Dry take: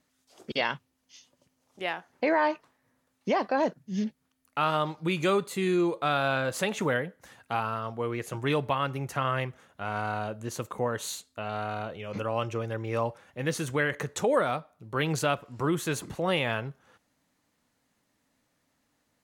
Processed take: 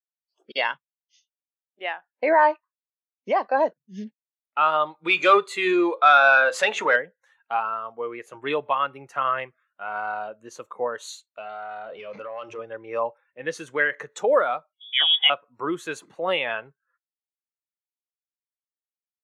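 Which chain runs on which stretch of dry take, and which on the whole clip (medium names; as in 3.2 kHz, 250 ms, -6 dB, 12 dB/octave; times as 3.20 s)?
5.04–6.96 s: de-hum 63.87 Hz, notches 8 + overdrive pedal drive 13 dB, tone 7 kHz, clips at -13.5 dBFS
11.26–12.59 s: hum notches 60/120/180/240/300/360 Hz + compression 4:1, threshold -36 dBFS + waveshaping leveller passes 2
14.73–15.30 s: frequency inversion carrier 3.5 kHz + band-stop 1.3 kHz, Q 20
whole clip: frequency weighting A; spectral noise reduction 18 dB; spectral contrast expander 1.5:1; trim +6.5 dB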